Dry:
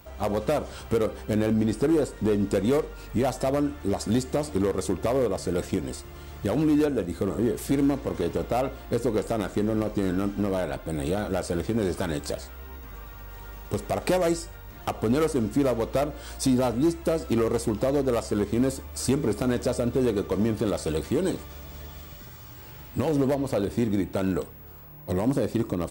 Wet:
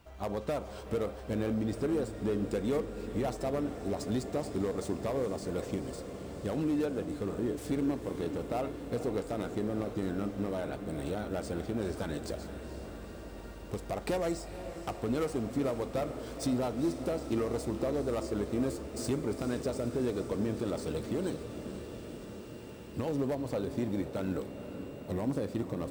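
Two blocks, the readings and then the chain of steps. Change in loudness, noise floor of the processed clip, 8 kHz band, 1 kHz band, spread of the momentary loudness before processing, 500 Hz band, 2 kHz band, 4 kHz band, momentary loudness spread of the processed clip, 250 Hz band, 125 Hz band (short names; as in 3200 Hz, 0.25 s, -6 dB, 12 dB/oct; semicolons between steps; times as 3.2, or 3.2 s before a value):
-8.0 dB, -45 dBFS, -9.5 dB, -7.5 dB, 17 LU, -7.5 dB, -8.0 dB, -8.0 dB, 10 LU, -8.0 dB, -7.5 dB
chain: median filter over 3 samples; diffused feedback echo 0.472 s, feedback 76%, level -11 dB; gain -8.5 dB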